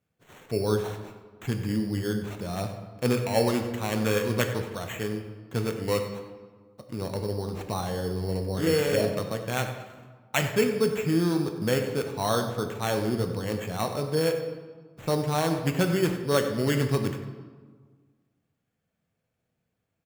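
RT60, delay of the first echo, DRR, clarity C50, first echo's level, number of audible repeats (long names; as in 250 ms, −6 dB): 1.6 s, 95 ms, 5.0 dB, 7.5 dB, −14.0 dB, 1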